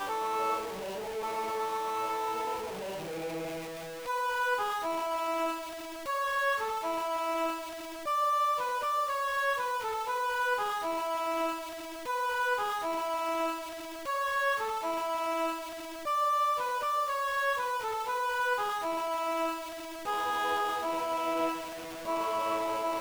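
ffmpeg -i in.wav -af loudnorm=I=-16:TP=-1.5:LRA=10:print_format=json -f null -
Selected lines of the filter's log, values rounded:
"input_i" : "-31.8",
"input_tp" : "-20.3",
"input_lra" : "3.3",
"input_thresh" : "-41.8",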